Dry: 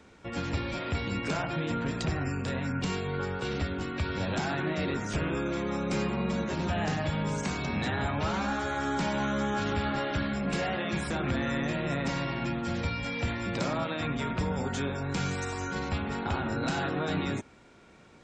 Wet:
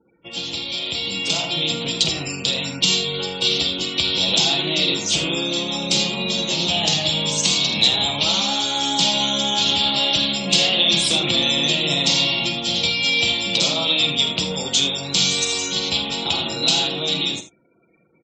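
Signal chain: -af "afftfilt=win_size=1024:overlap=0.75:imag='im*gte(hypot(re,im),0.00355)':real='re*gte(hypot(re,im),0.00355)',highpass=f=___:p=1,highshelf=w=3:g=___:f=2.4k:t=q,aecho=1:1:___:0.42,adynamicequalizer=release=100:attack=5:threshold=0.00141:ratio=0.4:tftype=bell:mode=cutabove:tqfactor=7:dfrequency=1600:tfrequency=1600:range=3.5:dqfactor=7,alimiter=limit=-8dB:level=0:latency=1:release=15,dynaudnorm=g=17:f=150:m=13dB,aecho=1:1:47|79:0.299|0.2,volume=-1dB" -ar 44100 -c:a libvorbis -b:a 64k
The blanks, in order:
260, 12.5, 6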